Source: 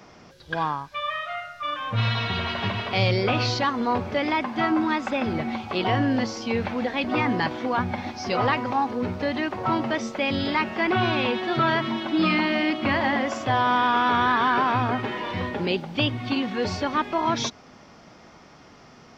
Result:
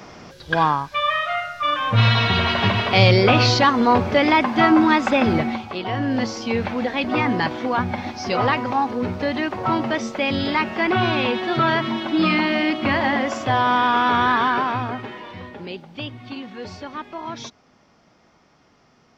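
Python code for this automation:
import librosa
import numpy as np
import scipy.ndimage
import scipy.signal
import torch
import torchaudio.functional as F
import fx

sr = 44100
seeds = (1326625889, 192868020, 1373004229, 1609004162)

y = fx.gain(x, sr, db=fx.line((5.36, 8.0), (5.83, -4.0), (6.24, 3.0), (14.37, 3.0), (15.39, -8.0)))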